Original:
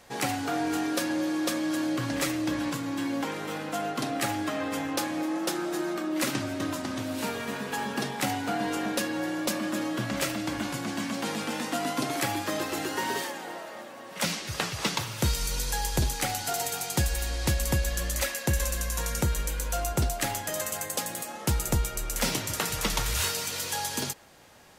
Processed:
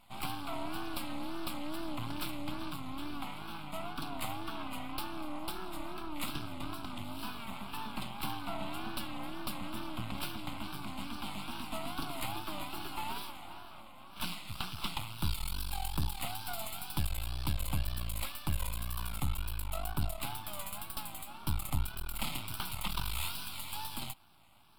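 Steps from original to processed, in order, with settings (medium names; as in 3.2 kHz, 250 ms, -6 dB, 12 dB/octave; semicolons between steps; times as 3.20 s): half-wave rectifier; static phaser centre 1.8 kHz, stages 6; wow and flutter 120 cents; trim -2 dB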